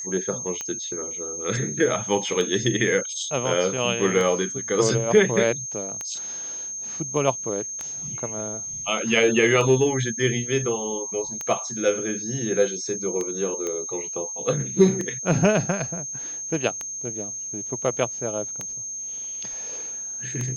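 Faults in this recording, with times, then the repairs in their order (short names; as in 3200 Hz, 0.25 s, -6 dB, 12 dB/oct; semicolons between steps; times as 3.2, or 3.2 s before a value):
tick 33 1/3 rpm -15 dBFS
tone 6400 Hz -30 dBFS
13.67 pop -16 dBFS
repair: de-click; notch 6400 Hz, Q 30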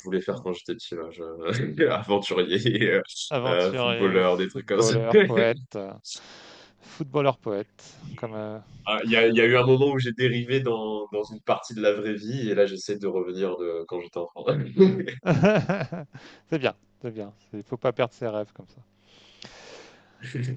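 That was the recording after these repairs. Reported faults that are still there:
none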